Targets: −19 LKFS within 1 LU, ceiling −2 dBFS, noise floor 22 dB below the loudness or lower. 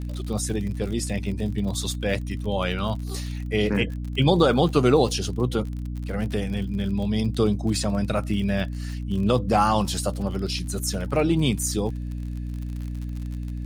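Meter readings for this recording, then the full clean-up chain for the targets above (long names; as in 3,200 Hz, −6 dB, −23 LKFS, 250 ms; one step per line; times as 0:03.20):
crackle rate 51 per second; mains hum 60 Hz; hum harmonics up to 300 Hz; level of the hum −28 dBFS; integrated loudness −25.0 LKFS; sample peak −6.0 dBFS; target loudness −19.0 LKFS
→ click removal
mains-hum notches 60/120/180/240/300 Hz
level +6 dB
brickwall limiter −2 dBFS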